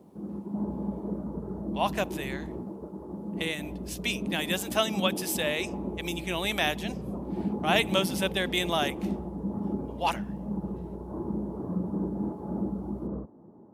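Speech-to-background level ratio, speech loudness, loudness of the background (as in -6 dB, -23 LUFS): 5.0 dB, -30.0 LUFS, -35.0 LUFS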